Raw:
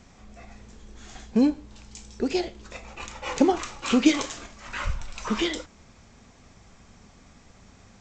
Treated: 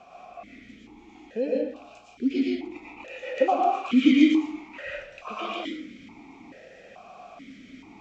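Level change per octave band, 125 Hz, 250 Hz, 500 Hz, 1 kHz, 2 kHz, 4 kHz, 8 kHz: under -10 dB, +1.5 dB, +1.5 dB, +4.5 dB, -0.5 dB, -3.5 dB, under -15 dB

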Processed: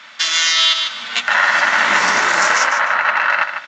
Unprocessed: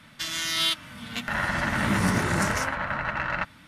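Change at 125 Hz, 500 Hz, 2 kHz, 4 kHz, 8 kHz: under -15 dB, +7.0 dB, +14.0 dB, +13.0 dB, +12.0 dB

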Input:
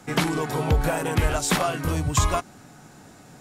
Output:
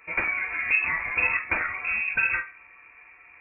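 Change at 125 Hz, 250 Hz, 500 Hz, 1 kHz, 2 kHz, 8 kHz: -24.0 dB, -19.5 dB, -16.5 dB, -8.0 dB, +8.5 dB, under -40 dB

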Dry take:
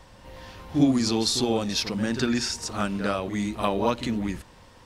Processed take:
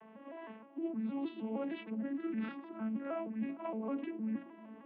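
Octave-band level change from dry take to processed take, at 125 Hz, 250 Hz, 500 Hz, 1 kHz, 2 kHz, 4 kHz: under -15 dB, -11.5 dB, -13.5 dB, -16.5 dB, -17.0 dB, -31.5 dB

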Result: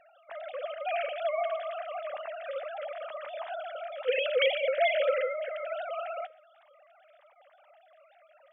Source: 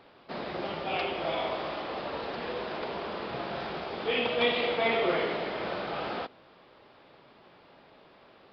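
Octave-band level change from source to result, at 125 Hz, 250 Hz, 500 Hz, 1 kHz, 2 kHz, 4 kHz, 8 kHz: under -35 dB, under -30 dB, +1.5 dB, -2.5 dB, -1.5 dB, -3.5 dB, no reading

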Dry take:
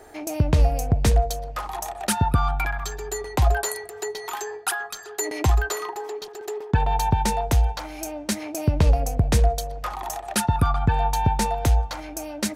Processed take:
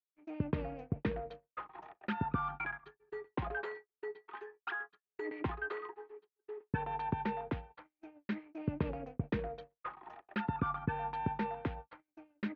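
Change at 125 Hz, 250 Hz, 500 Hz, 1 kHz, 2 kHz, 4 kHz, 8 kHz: -18.5 dB, -10.0 dB, -13.5 dB, -14.0 dB, -10.5 dB, -23.0 dB, under -40 dB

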